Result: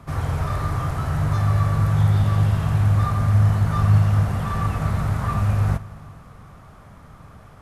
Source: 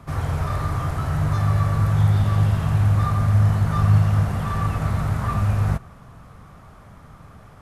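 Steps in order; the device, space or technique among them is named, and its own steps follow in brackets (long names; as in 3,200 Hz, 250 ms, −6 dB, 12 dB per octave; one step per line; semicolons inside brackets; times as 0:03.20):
compressed reverb return (on a send at −13.5 dB: convolution reverb RT60 1.9 s, pre-delay 54 ms + downward compressor, threshold −20 dBFS, peak gain reduction 8.5 dB)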